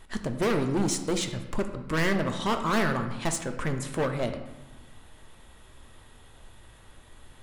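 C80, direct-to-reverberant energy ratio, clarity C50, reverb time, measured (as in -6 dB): 11.0 dB, 6.0 dB, 9.0 dB, 1.2 s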